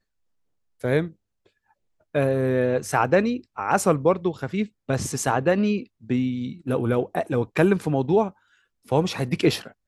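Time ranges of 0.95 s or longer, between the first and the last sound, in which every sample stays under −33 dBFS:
0:01.08–0:02.15

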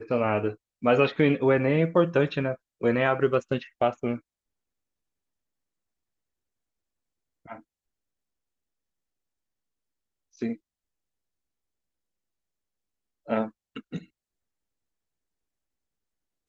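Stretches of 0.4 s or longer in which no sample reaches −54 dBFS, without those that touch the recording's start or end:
0:04.20–0:07.46
0:07.62–0:10.34
0:10.57–0:13.26

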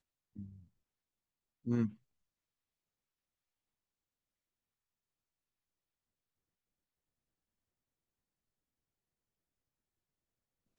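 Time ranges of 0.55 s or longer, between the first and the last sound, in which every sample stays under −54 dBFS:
0:00.64–0:01.65

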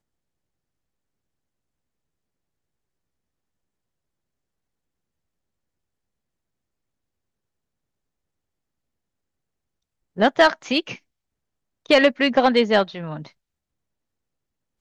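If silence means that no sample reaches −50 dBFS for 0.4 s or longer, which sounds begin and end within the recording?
0:10.16–0:10.99
0:11.86–0:13.32

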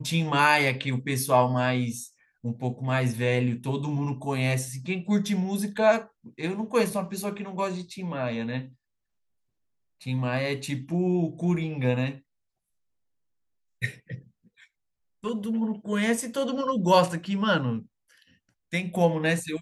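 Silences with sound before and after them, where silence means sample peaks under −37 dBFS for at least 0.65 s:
0:08.66–0:10.06
0:12.16–0:13.82
0:14.19–0:15.24
0:17.82–0:18.73

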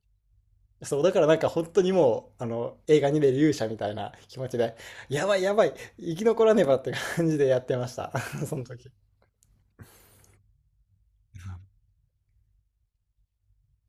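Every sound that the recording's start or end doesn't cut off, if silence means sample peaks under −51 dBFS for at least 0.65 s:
0:00.81–0:10.35
0:11.34–0:11.64

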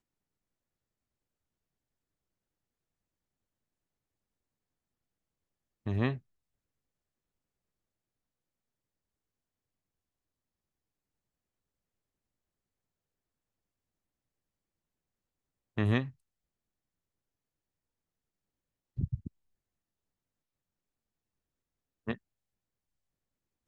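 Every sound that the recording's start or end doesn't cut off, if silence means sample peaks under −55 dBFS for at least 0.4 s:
0:05.86–0:06.19
0:15.77–0:16.12
0:18.97–0:19.28
0:22.07–0:22.17

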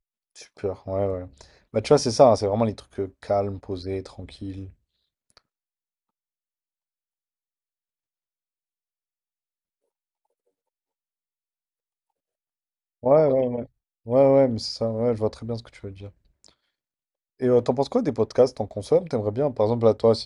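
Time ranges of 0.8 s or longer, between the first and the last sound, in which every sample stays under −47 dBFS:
0:05.38–0:13.03
0:16.49–0:17.40

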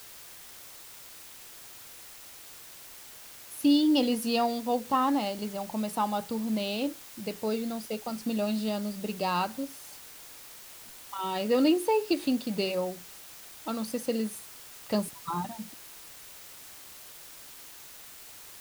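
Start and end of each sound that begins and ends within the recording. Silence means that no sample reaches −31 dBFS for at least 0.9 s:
0:03.60–0:09.65
0:11.13–0:15.62

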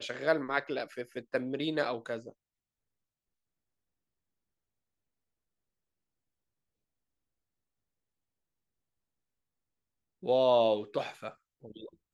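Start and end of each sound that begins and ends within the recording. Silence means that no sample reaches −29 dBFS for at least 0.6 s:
0:10.28–0:11.28

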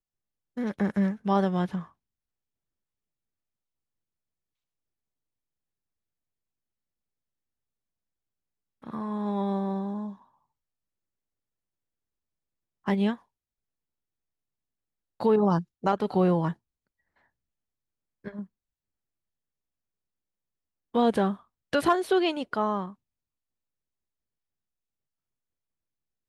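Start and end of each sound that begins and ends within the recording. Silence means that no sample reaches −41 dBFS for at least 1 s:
0:08.83–0:10.14
0:12.86–0:13.15
0:15.20–0:16.53
0:18.25–0:18.44
0:20.94–0:22.92

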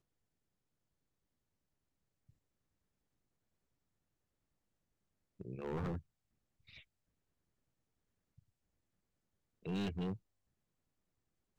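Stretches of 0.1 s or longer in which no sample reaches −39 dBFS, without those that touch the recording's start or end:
0:05.97–0:09.66

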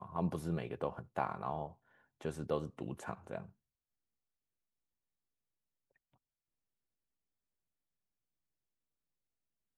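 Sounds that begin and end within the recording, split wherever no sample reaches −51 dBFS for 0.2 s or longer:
0:02.21–0:03.49

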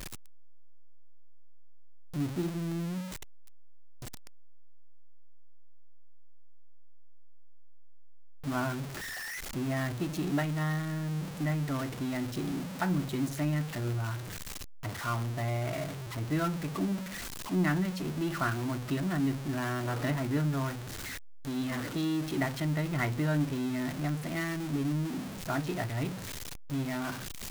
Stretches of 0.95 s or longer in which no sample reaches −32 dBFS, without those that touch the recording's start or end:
0:03.00–0:08.47

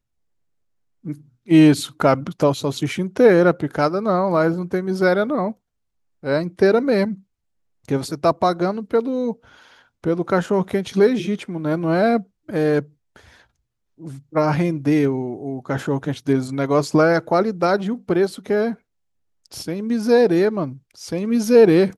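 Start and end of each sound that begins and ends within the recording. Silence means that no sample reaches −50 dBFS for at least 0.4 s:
0:01.04–0:05.55
0:06.23–0:07.22
0:07.85–0:13.45
0:13.98–0:18.78

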